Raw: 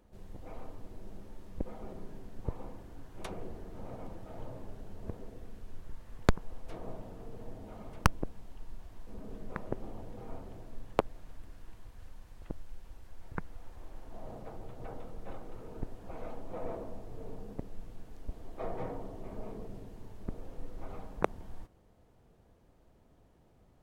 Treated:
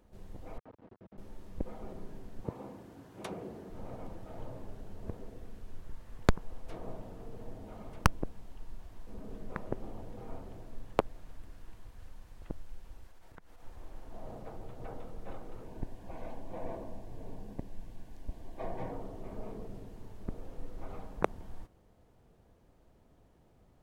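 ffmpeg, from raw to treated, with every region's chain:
-filter_complex "[0:a]asettb=1/sr,asplit=3[a][b][c];[a]atrim=end=0.584[d];[b]atrim=start=0.58:end=1.18,asetpts=PTS-STARTPTS,afade=t=in:d=0.004:c=qsin,afade=t=out:st=0.596:d=0.004:c=qsin,aeval=exprs='max(val(0),0)':c=same,highpass=110,lowpass=2.2k[e];[c]atrim=start=1.176[f];[d][e]acrossfade=d=0.004:c1=hsin:c2=qsin[g];[g][f]acrossfade=d=0.004:c1=qsin:c2=hsin,asettb=1/sr,asplit=3[h][i][j];[h]atrim=end=2.444[k];[i]atrim=start=2.44:end=3.7,asetpts=PTS-STARTPTS,afade=t=in:d=0.004:c=qsin,afade=t=out:st=1.256:d=0.004:c=qsin,highpass=160,lowshelf=f=350:g=5.5[l];[j]atrim=start=3.696[m];[k][l]acrossfade=d=0.004:c1=hsin:c2=qsin[n];[n][m]acrossfade=d=0.004:c1=qsin:c2=hsin,asettb=1/sr,asplit=3[o][p][q];[o]atrim=end=13.074[r];[p]atrim=start=13.07:end=13.63,asetpts=PTS-STARTPTS,afade=t=in:d=0.004:c=qsin,afade=t=out:st=0.556:d=0.004:c=qsin,lowshelf=f=290:g=-8.5,acompressor=threshold=-47dB:ratio=10:attack=3.2:release=140:knee=1:detection=peak[s];[q]atrim=start=13.626[t];[r][s]acrossfade=d=0.004:c1=hsin:c2=qsin[u];[u][t]acrossfade=d=0.004:c1=qsin:c2=hsin,asettb=1/sr,asplit=3[v][w][x];[v]atrim=end=15.644[y];[w]atrim=start=15.64:end=18.92,asetpts=PTS-STARTPTS,afade=t=in:d=0.004:c=qsin,afade=t=out:st=3.276:d=0.004:c=qsin,asuperstop=centerf=1300:order=4:qfactor=5.4,equalizer=f=450:w=5.5:g=-7[z];[x]atrim=start=18.916[aa];[y][z]acrossfade=d=0.004:c1=hsin:c2=qsin[ab];[ab][aa]acrossfade=d=0.004:c1=qsin:c2=hsin"

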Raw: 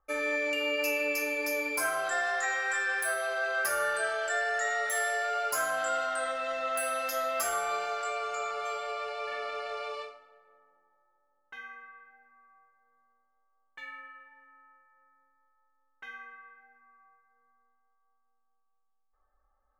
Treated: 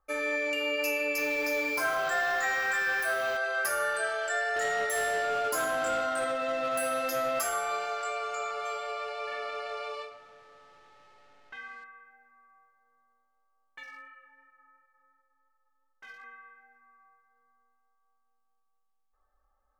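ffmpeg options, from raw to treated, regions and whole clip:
-filter_complex "[0:a]asettb=1/sr,asplit=3[a][b][c];[a]atrim=end=1.184[d];[b]atrim=start=1.18:end=3.37,asetpts=PTS-STARTPTS,afade=t=in:d=0.004:c=qsin,afade=t=out:st=2.186:d=0.004:c=qsin,aeval=exprs='val(0)+0.5*0.0188*sgn(val(0))':c=same,equalizer=f=10k:t=o:w=0.68:g=-13.5[e];[c]atrim=start=3.366[f];[d][e]acrossfade=d=0.004:c1=hsin:c2=qsin[g];[g][f]acrossfade=d=0.004:c1=qsin:c2=hsin,asettb=1/sr,asplit=3[h][i][j];[h]atrim=end=4.564[k];[i]atrim=start=4.56:end=7.39,asetpts=PTS-STARTPTS,afade=t=in:d=0.004:c=qsin,afade=t=out:st=2.826:d=0.004:c=qsin,equalizer=f=310:t=o:w=1.4:g=12,asoftclip=type=hard:threshold=-25dB[l];[j]atrim=start=7.386[m];[k][l]acrossfade=d=0.004:c1=hsin:c2=qsin[n];[n][m]acrossfade=d=0.004:c1=qsin:c2=hsin,asettb=1/sr,asplit=3[o][p][q];[o]atrim=end=10.114[r];[p]atrim=start=10.11:end=11.84,asetpts=PTS-STARTPTS,afade=t=in:d=0.004:c=qsin,afade=t=out:st=1.726:d=0.004:c=qsin,aeval=exprs='val(0)+0.5*0.00211*sgn(val(0))':c=same,lowpass=5.2k[s];[q]atrim=start=11.836[t];[r][s]acrossfade=d=0.004:c1=hsin:c2=qsin[u];[u][t]acrossfade=d=0.004:c1=qsin:c2=hsin,asettb=1/sr,asplit=3[v][w][x];[v]atrim=end=13.834[y];[w]atrim=start=13.83:end=16.24,asetpts=PTS-STARTPTS,afade=t=in:d=0.004:c=qsin,afade=t=out:st=2.406:d=0.004:c=qsin,asoftclip=type=hard:threshold=-39.5dB,flanger=delay=16.5:depth=2.3:speed=2.8[z];[x]atrim=start=16.236[aa];[y][z]acrossfade=d=0.004:c1=hsin:c2=qsin[ab];[ab][aa]acrossfade=d=0.004:c1=qsin:c2=hsin"

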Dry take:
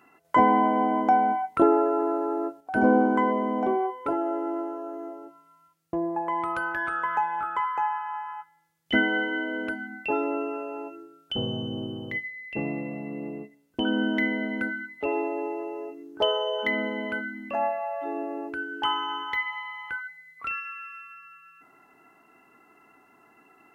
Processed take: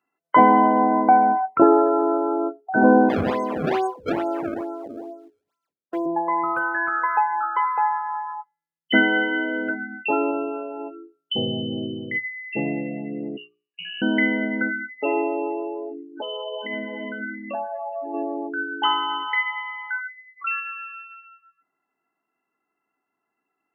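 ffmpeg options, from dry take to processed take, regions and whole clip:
-filter_complex "[0:a]asettb=1/sr,asplit=3[a][b][c];[a]atrim=end=3.094[d];[b]atrim=start=3.09:end=6.06,asetpts=PTS-STARTPTS,afade=t=in:d=0.004:c=qsin,afade=t=out:st=2.966:d=0.004:c=qsin,aeval=exprs='if(lt(val(0),0),0.708*val(0),val(0))':c=same,highpass=280,acrusher=samples=27:mix=1:aa=0.000001:lfo=1:lforange=43.2:lforate=2.3[e];[c]atrim=start=6.056[f];[d][e]acrossfade=d=0.004:c1=hsin:c2=qsin[g];[g][f]acrossfade=d=0.004:c1=qsin:c2=hsin,asettb=1/sr,asplit=3[h][i][j];[h]atrim=end=10.314[k];[i]atrim=start=10.31:end=10.8,asetpts=PTS-STARTPTS,afade=t=in:d=0.004:c=qsin,afade=t=out:st=0.486:d=0.004:c=qsin,aeval=exprs='if(lt(val(0),0),0.708*val(0),val(0))':c=same,highshelf=f=3.4k:g=-5.5[l];[j]atrim=start=10.796[m];[k][l]acrossfade=d=0.004:c1=hsin:c2=qsin[n];[n][m]acrossfade=d=0.004:c1=qsin:c2=hsin,asettb=1/sr,asplit=3[o][p][q];[o]atrim=end=13.374[r];[p]atrim=start=13.37:end=14.02,asetpts=PTS-STARTPTS,afade=t=in:d=0.004:c=qsin,afade=t=out:st=0.646:d=0.004:c=qsin,highpass=330,acompressor=threshold=-43dB:ratio=2:attack=3.2:release=140:knee=1:detection=peak,lowpass=f=2.7k:t=q:w=0.5098,lowpass=f=2.7k:t=q:w=0.6013,lowpass=f=2.7k:t=q:w=0.9,lowpass=f=2.7k:t=q:w=2.563,afreqshift=-3200[s];[q]atrim=start=14.016[t];[r][s]acrossfade=d=0.004:c1=hsin:c2=qsin[u];[u][t]acrossfade=d=0.004:c1=qsin:c2=hsin,asettb=1/sr,asplit=3[v][w][x];[v]atrim=end=15.914[y];[w]atrim=start=15.91:end=18.14,asetpts=PTS-STARTPTS,afade=t=in:d=0.004:c=qsin,afade=t=out:st=2.226:d=0.004:c=qsin,acompressor=threshold=-32dB:ratio=8:attack=3.2:release=140:knee=1:detection=peak,aphaser=in_gain=1:out_gain=1:delay=4.3:decay=0.3:speed=1.2:type=sinusoidal,aecho=1:1:418:0.188,atrim=end_sample=98343[z];[x]atrim=start=18.136[aa];[y][z]acrossfade=d=0.004:c1=hsin:c2=qsin[ab];[ab][aa]acrossfade=d=0.004:c1=qsin:c2=hsin,afftdn=nr=27:nf=-34,highpass=130,bandreject=f=60:t=h:w=6,bandreject=f=120:t=h:w=6,bandreject=f=180:t=h:w=6,bandreject=f=240:t=h:w=6,bandreject=f=300:t=h:w=6,bandreject=f=360:t=h:w=6,bandreject=f=420:t=h:w=6,volume=5.5dB"

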